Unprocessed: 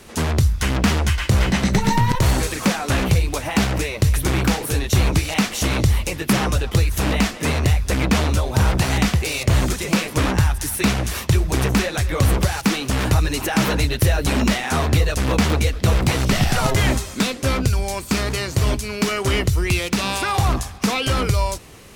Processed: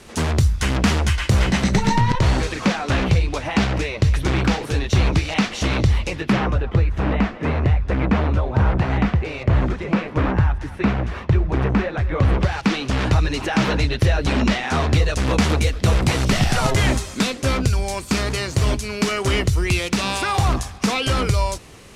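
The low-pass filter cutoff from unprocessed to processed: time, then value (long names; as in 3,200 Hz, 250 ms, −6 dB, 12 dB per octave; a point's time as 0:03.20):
0:01.63 10,000 Hz
0:02.24 4,800 Hz
0:06.15 4,800 Hz
0:06.56 1,800 Hz
0:12.05 1,800 Hz
0:12.81 4,800 Hz
0:14.60 4,800 Hz
0:15.50 10,000 Hz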